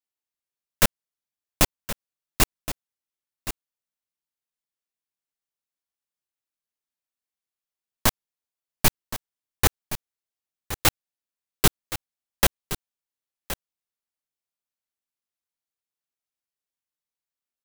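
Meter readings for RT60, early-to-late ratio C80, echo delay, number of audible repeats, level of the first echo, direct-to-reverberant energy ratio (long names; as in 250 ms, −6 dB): no reverb audible, no reverb audible, 1,070 ms, 1, −12.5 dB, no reverb audible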